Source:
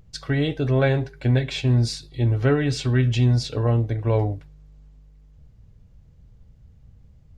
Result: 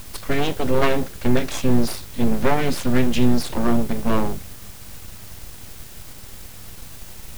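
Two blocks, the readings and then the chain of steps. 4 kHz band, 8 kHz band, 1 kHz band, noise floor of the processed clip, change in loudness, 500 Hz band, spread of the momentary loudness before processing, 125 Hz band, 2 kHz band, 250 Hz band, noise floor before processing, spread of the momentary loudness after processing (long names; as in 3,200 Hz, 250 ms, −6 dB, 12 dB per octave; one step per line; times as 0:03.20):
+1.0 dB, +6.5 dB, +8.0 dB, −39 dBFS, 0.0 dB, +1.5 dB, 5 LU, −7.5 dB, +2.0 dB, +4.5 dB, −52 dBFS, 19 LU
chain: low-shelf EQ 63 Hz +7 dB
background noise brown −42 dBFS
in parallel at −6 dB: bit-depth reduction 6 bits, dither triangular
on the sum: full-wave rectification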